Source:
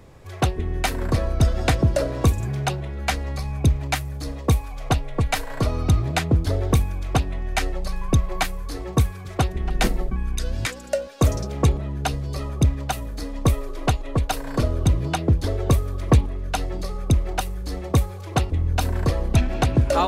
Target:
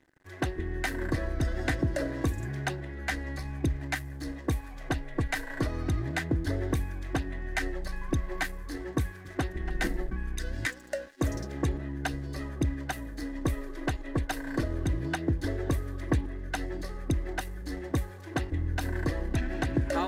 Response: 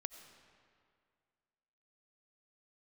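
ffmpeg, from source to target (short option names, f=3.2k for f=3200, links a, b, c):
-af "aeval=exprs='sgn(val(0))*max(abs(val(0))-0.00631,0)':c=same,alimiter=limit=-12.5dB:level=0:latency=1:release=86,superequalizer=6b=2.51:11b=3.16,volume=-8dB"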